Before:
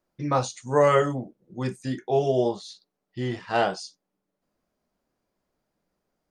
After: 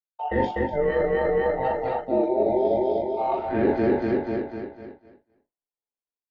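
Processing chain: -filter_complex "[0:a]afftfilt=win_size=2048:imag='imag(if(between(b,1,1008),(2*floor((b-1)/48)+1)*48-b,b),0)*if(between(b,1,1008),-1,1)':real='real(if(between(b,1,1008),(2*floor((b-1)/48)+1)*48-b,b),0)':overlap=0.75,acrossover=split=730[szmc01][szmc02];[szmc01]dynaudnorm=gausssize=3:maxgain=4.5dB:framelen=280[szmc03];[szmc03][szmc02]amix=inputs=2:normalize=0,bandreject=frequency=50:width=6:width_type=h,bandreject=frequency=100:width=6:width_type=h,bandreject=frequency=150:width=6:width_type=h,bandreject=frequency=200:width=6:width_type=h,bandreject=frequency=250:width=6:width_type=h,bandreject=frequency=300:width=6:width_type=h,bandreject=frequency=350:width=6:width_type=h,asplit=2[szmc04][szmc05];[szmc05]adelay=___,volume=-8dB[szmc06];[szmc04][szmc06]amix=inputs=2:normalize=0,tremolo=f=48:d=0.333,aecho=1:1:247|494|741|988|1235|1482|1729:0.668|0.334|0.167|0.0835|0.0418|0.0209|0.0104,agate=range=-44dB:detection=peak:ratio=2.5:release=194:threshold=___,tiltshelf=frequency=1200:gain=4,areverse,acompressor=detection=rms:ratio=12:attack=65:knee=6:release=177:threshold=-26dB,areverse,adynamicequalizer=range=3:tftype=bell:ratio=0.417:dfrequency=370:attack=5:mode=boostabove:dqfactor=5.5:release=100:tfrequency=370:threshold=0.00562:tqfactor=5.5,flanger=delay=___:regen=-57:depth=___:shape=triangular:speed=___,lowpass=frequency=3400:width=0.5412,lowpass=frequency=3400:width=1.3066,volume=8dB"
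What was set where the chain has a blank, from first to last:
41, -46dB, 7.8, 4.4, 0.48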